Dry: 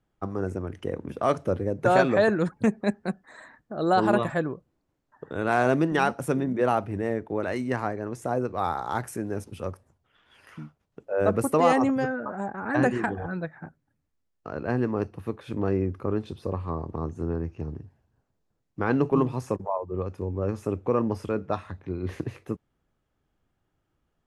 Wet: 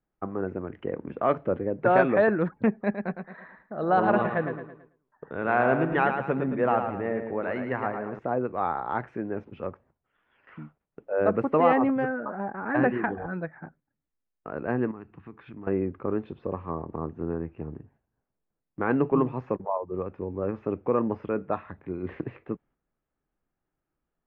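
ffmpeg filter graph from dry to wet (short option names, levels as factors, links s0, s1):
-filter_complex "[0:a]asettb=1/sr,asplit=3[s0][s1][s2];[s0]atrim=end=2.764[s3];[s1]atrim=start=2.76:end=8.19,asetpts=PTS-STARTPTS,afade=t=in:d=0.004:c=qsin,afade=t=out:st=5.426:d=0.004:c=qsin,equalizer=f=320:w=2.2:g=-4.5,aecho=1:1:110|220|330|440|550:0.447|0.183|0.0751|0.0308|0.0126,atrim=end_sample=239463[s4];[s2]atrim=start=8.186[s5];[s3][s4]acrossfade=d=0.004:c1=hsin:c2=qsin[s6];[s6][s5]acrossfade=d=0.004:c1=qsin:c2=hsin,asettb=1/sr,asplit=3[s7][s8][s9];[s7]atrim=end=14.914[s10];[s8]atrim=start=14.91:end=15.67,asetpts=PTS-STARTPTS,afade=t=in:d=0.004:c=qsin,afade=t=out:st=0.756:d=0.004:c=qsin,equalizer=f=550:w=2:g=-14.5,acompressor=threshold=0.0112:ratio=3:attack=3.2:release=140:knee=1:detection=peak[s11];[s9]atrim=start=15.666[s12];[s10][s11]acrossfade=d=0.004:c1=hsin:c2=qsin[s13];[s13][s12]acrossfade=d=0.004:c1=qsin:c2=hsin,agate=range=0.447:threshold=0.002:ratio=16:detection=peak,lowpass=f=2500:w=0.5412,lowpass=f=2500:w=1.3066,equalizer=f=91:w=1.6:g=-9"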